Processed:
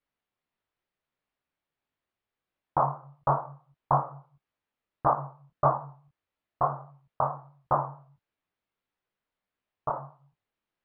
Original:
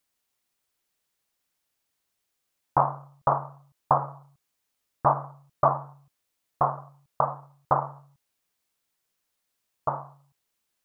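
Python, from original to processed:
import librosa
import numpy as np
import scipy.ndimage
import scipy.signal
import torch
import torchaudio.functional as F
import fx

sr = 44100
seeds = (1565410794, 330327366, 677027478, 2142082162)

y = fx.air_absorb(x, sr, metres=380.0)
y = fx.detune_double(y, sr, cents=54)
y = F.gain(torch.from_numpy(y), 3.0).numpy()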